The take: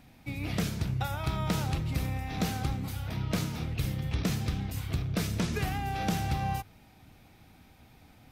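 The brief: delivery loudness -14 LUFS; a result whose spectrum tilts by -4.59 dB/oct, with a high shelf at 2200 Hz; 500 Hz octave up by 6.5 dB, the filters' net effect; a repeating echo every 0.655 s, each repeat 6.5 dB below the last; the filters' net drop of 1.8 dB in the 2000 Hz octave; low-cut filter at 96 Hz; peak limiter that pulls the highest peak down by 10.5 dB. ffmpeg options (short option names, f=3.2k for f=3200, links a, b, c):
-af "highpass=96,equalizer=f=500:t=o:g=8,equalizer=f=2k:t=o:g=-8,highshelf=f=2.2k:g=8.5,alimiter=limit=-23.5dB:level=0:latency=1,aecho=1:1:655|1310|1965|2620|3275|3930:0.473|0.222|0.105|0.0491|0.0231|0.0109,volume=19dB"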